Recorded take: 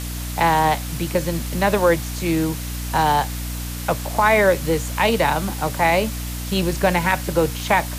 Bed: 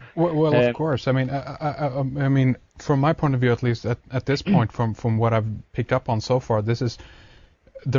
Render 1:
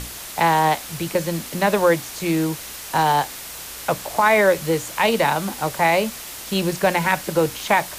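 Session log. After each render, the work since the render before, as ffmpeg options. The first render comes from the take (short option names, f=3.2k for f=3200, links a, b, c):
-af "bandreject=f=60:t=h:w=6,bandreject=f=120:t=h:w=6,bandreject=f=180:t=h:w=6,bandreject=f=240:t=h:w=6,bandreject=f=300:t=h:w=6"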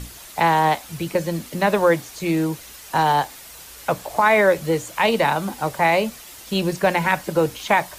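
-af "afftdn=nr=8:nf=-35"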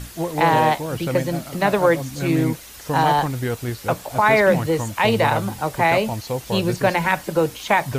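-filter_complex "[1:a]volume=-5dB[a];[0:a][a]amix=inputs=2:normalize=0"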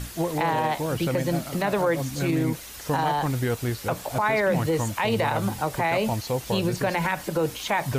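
-af "alimiter=limit=-15dB:level=0:latency=1:release=74"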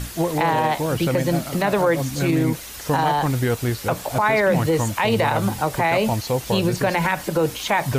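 -af "volume=4.5dB"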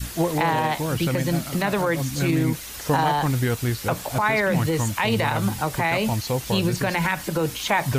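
-af "adynamicequalizer=threshold=0.02:dfrequency=570:dqfactor=0.8:tfrequency=570:tqfactor=0.8:attack=5:release=100:ratio=0.375:range=3.5:mode=cutabove:tftype=bell"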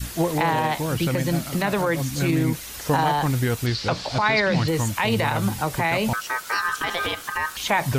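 -filter_complex "[0:a]asettb=1/sr,asplit=3[a][b][c];[a]atrim=end=3.664[d];[b]atrim=start=3.66:end=4.68,asetpts=PTS-STARTPTS,afade=t=in:d=0.004:c=qsin,afade=t=out:st=1.016:d=0.004:c=qsin,lowpass=f=4.6k:t=q:w=3.5[e];[c]atrim=start=4.676[f];[d][e]acrossfade=d=0.004:c1=hsin:c2=qsin[g];[g][f]acrossfade=d=0.004:c1=qsin:c2=hsin,asettb=1/sr,asplit=3[h][i][j];[h]atrim=end=6.134[k];[i]atrim=start=6.13:end=7.57,asetpts=PTS-STARTPTS,afade=t=in:d=0.004:c=qsin,afade=t=out:st=1.436:d=0.004:c=qsin,aeval=exprs='val(0)*sin(2*PI*1400*n/s)':c=same[l];[j]atrim=start=7.566[m];[k][l]acrossfade=d=0.004:c1=hsin:c2=qsin[n];[n][m]acrossfade=d=0.004:c1=qsin:c2=hsin"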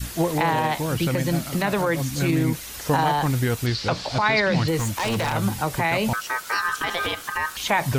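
-filter_complex "[0:a]asettb=1/sr,asplit=3[a][b][c];[a]atrim=end=4.774[d];[b]atrim=start=4.77:end=5.33,asetpts=PTS-STARTPTS,afade=t=in:d=0.004:c=qsin,afade=t=out:st=0.556:d=0.004:c=qsin,aeval=exprs='0.119*(abs(mod(val(0)/0.119+3,4)-2)-1)':c=same[e];[c]atrim=start=5.326[f];[d][e]acrossfade=d=0.004:c1=hsin:c2=qsin[g];[g][f]acrossfade=d=0.004:c1=qsin:c2=hsin"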